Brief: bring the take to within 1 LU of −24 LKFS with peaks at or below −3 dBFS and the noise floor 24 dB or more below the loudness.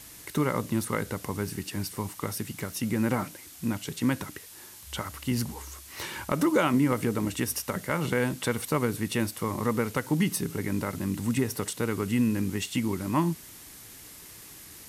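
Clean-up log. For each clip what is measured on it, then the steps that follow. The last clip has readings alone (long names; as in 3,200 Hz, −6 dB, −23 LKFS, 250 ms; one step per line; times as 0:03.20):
background noise floor −48 dBFS; target noise floor −54 dBFS; integrated loudness −29.5 LKFS; sample peak −11.5 dBFS; target loudness −24.0 LKFS
→ broadband denoise 6 dB, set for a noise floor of −48 dBFS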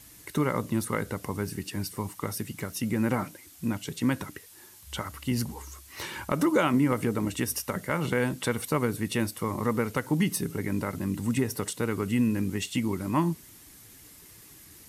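background noise floor −52 dBFS; target noise floor −54 dBFS
→ broadband denoise 6 dB, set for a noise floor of −52 dBFS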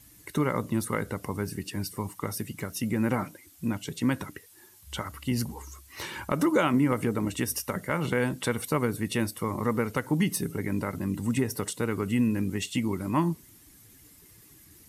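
background noise floor −55 dBFS; integrated loudness −29.5 LKFS; sample peak −11.5 dBFS; target loudness −24.0 LKFS
→ level +5.5 dB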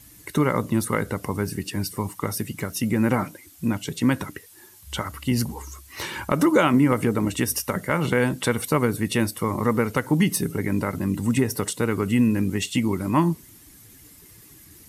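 integrated loudness −24.0 LKFS; sample peak −6.0 dBFS; background noise floor −49 dBFS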